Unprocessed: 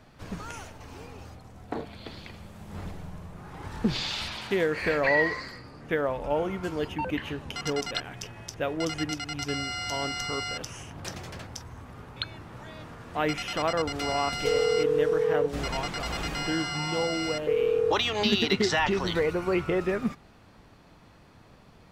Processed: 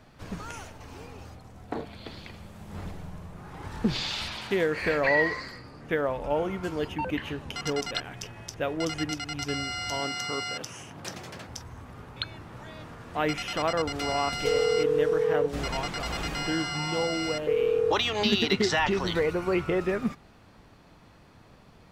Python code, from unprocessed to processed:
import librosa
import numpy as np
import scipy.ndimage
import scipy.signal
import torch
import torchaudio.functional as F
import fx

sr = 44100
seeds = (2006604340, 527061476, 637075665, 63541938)

y = fx.highpass(x, sr, hz=130.0, slope=12, at=(10.0, 11.49))